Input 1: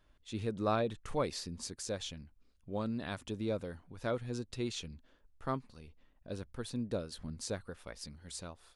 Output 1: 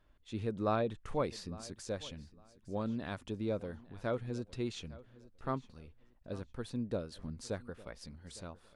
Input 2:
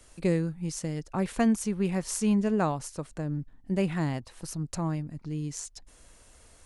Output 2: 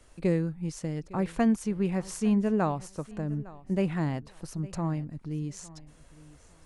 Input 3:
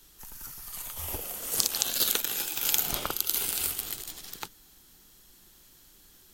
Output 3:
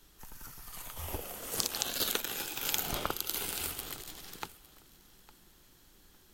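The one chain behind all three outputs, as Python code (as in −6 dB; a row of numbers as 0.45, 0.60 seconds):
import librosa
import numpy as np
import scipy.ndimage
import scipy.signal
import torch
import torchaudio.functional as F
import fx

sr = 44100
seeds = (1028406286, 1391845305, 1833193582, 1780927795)

p1 = fx.high_shelf(x, sr, hz=3600.0, db=-8.5)
y = p1 + fx.echo_feedback(p1, sr, ms=857, feedback_pct=21, wet_db=-20, dry=0)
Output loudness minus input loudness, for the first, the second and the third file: −0.5, 0.0, −6.5 LU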